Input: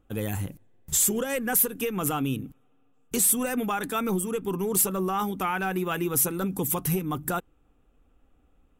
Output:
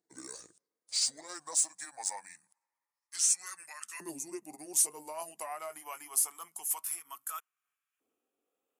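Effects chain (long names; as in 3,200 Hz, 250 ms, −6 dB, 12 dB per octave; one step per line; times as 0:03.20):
pitch glide at a constant tempo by −9 semitones ending unshifted
first-order pre-emphasis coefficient 0.8
auto-filter high-pass saw up 0.25 Hz 350–1,700 Hz
level −3 dB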